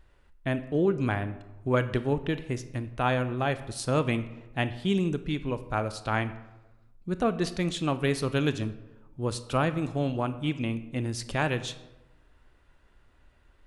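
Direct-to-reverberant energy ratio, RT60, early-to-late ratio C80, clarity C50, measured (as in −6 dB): 11.5 dB, 1.0 s, 16.0 dB, 14.0 dB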